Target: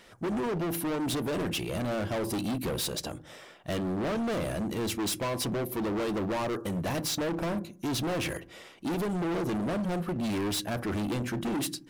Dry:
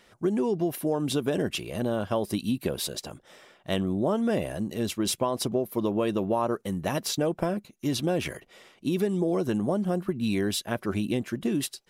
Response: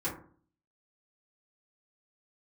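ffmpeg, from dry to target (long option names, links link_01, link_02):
-filter_complex "[0:a]asplit=2[link_01][link_02];[1:a]atrim=start_sample=2205,lowshelf=frequency=220:gain=8.5[link_03];[link_02][link_03]afir=irnorm=-1:irlink=0,volume=-20dB[link_04];[link_01][link_04]amix=inputs=2:normalize=0,volume=31.5dB,asoftclip=hard,volume=-31.5dB,volume=3dB"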